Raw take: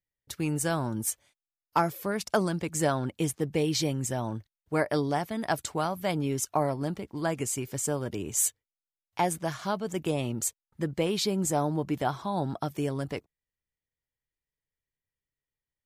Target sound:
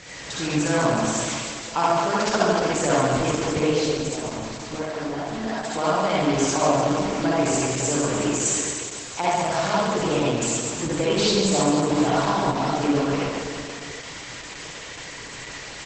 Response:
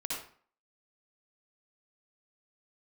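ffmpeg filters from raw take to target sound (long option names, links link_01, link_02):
-filter_complex "[0:a]aeval=exprs='val(0)+0.5*0.0335*sgn(val(0))':channel_layout=same,highpass=frequency=260:poles=1,asplit=3[link_01][link_02][link_03];[link_01]afade=type=out:start_time=3.7:duration=0.02[link_04];[link_02]acompressor=threshold=-33dB:ratio=5,afade=type=in:start_time=3.7:duration=0.02,afade=type=out:start_time=5.75:duration=0.02[link_05];[link_03]afade=type=in:start_time=5.75:duration=0.02[link_06];[link_04][link_05][link_06]amix=inputs=3:normalize=0,aecho=1:1:140|301|486.2|699.1|943.9:0.631|0.398|0.251|0.158|0.1[link_07];[1:a]atrim=start_sample=2205[link_08];[link_07][link_08]afir=irnorm=-1:irlink=0,volume=3.5dB" -ar 48000 -c:a libopus -b:a 12k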